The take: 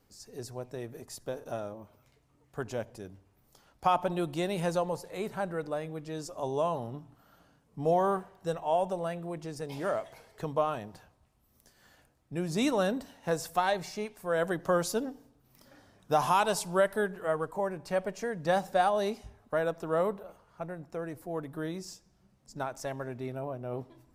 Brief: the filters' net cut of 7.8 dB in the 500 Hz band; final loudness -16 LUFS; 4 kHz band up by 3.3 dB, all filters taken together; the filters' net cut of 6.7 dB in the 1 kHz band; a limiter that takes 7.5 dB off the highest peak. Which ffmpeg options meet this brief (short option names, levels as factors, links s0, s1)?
-af "equalizer=f=500:t=o:g=-8,equalizer=f=1000:t=o:g=-6,equalizer=f=4000:t=o:g=4.5,volume=13.3,alimiter=limit=0.708:level=0:latency=1"